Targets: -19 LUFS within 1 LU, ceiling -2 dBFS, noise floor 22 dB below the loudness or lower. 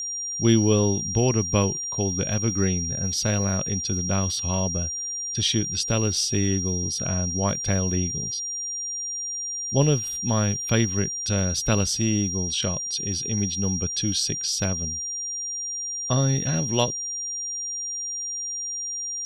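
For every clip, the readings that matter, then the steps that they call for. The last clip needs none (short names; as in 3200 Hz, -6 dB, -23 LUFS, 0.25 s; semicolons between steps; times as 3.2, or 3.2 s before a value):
ticks 16/s; steady tone 5700 Hz; tone level -28 dBFS; loudness -24.0 LUFS; peak -7.0 dBFS; loudness target -19.0 LUFS
-> de-click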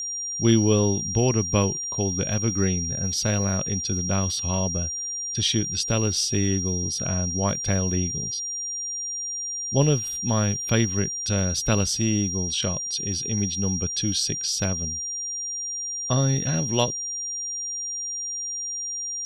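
ticks 0.21/s; steady tone 5700 Hz; tone level -28 dBFS
-> notch 5700 Hz, Q 30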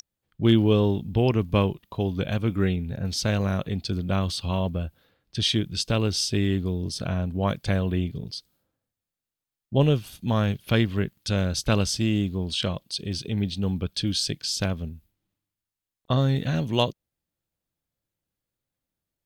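steady tone none; loudness -25.5 LUFS; peak -7.5 dBFS; loudness target -19.0 LUFS
-> gain +6.5 dB; limiter -2 dBFS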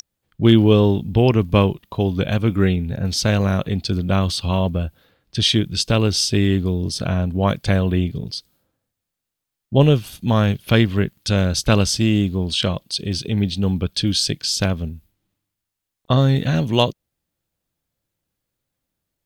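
loudness -19.0 LUFS; peak -2.0 dBFS; noise floor -82 dBFS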